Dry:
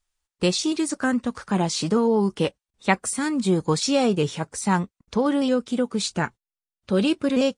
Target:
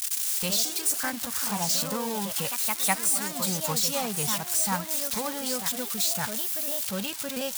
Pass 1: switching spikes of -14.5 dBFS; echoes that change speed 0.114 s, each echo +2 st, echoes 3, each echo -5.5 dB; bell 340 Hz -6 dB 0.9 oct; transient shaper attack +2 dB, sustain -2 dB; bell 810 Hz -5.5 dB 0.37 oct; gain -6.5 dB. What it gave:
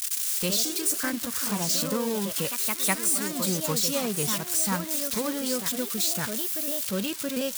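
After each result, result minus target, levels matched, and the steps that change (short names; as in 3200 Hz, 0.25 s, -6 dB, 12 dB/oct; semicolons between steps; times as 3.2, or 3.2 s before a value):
250 Hz band +4.0 dB; 1000 Hz band -3.5 dB
change: first bell 340 Hz -15.5 dB 0.9 oct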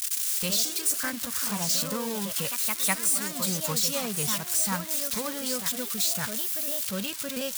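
1000 Hz band -4.0 dB
change: second bell 810 Hz +3.5 dB 0.37 oct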